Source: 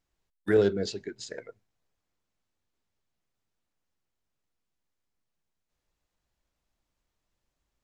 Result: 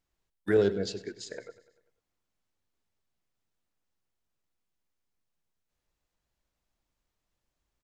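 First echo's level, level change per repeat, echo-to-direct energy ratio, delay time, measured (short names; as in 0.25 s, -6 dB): -17.0 dB, -5.0 dB, -15.5 dB, 98 ms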